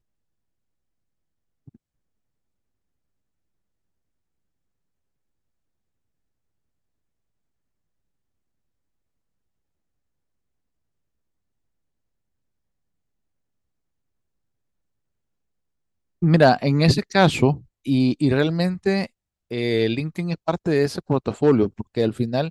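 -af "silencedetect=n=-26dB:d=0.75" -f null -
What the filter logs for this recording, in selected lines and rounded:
silence_start: 0.00
silence_end: 16.22 | silence_duration: 16.22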